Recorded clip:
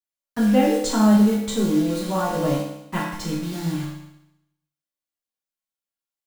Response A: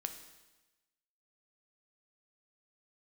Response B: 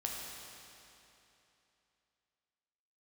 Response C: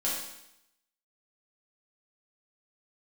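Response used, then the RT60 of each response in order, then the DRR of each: C; 1.1 s, 3.0 s, 0.80 s; 6.5 dB, -2.0 dB, -7.5 dB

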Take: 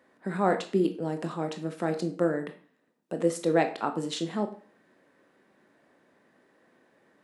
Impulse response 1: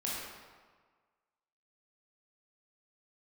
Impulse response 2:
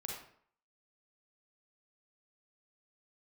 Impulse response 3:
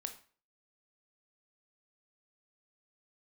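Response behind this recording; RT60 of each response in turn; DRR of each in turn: 3; 1.5 s, 0.60 s, 0.40 s; -6.0 dB, -2.0 dB, 6.5 dB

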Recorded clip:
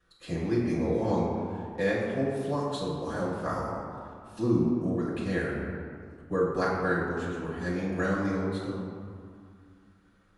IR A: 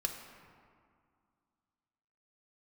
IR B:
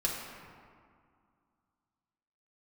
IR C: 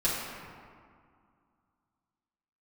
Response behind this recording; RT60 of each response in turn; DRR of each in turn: C; 2.1 s, 2.1 s, 2.1 s; 3.0 dB, -3.5 dB, -8.5 dB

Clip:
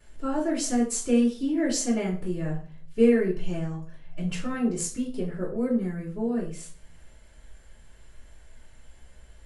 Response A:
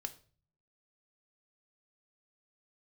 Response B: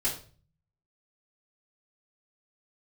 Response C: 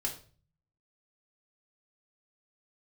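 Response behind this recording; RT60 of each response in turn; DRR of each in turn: B; 0.40 s, 0.40 s, 0.40 s; 7.5 dB, -9.5 dB, -1.5 dB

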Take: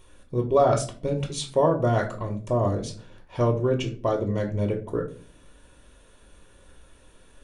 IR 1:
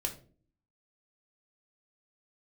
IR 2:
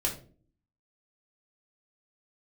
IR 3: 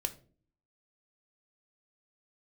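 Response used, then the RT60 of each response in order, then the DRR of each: 1; 0.45 s, 0.45 s, 0.45 s; 1.5 dB, -2.5 dB, 7.0 dB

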